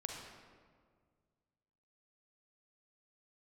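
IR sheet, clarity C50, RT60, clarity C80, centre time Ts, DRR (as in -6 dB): 1.5 dB, 1.8 s, 3.5 dB, 69 ms, 0.5 dB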